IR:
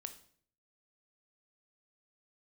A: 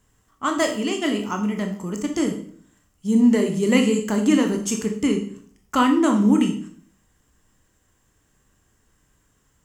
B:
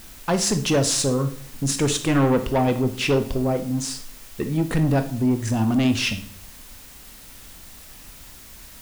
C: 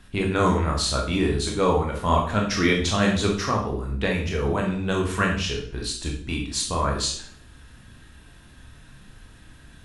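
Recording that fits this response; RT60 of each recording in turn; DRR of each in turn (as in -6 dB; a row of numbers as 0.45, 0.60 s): B; 0.55, 0.55, 0.55 s; 4.0, 8.0, -0.5 dB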